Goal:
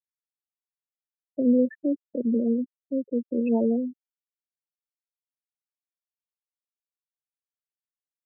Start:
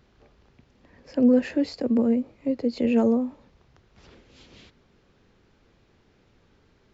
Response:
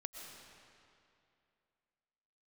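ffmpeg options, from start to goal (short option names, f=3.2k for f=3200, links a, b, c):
-af "atempo=0.84,afftfilt=real='re*gte(hypot(re,im),0.112)':imag='im*gte(hypot(re,im),0.112)':win_size=1024:overlap=0.75,volume=-2.5dB"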